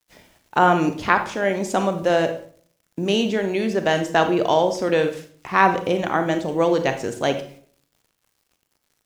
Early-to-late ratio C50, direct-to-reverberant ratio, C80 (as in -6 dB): 9.5 dB, 7.5 dB, 15.0 dB